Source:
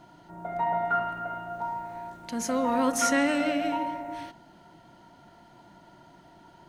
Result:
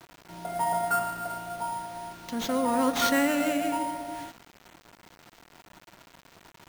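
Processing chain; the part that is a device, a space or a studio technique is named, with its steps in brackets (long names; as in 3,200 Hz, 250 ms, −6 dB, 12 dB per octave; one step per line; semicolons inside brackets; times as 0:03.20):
early 8-bit sampler (sample-rate reduction 10,000 Hz, jitter 0%; bit reduction 8 bits)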